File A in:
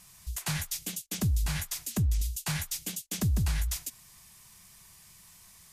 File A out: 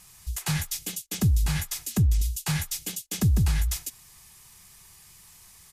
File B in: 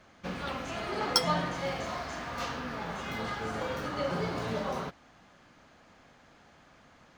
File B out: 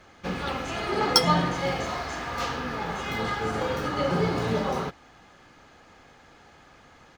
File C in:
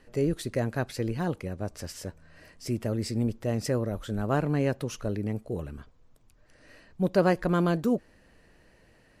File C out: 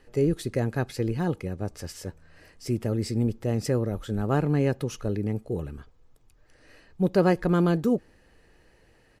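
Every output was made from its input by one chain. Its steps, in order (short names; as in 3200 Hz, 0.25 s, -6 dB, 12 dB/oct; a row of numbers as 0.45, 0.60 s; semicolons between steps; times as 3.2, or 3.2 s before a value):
comb 2.4 ms, depth 30%; dynamic EQ 180 Hz, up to +6 dB, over -42 dBFS, Q 0.86; match loudness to -27 LUFS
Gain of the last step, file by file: +2.5, +5.0, -0.5 dB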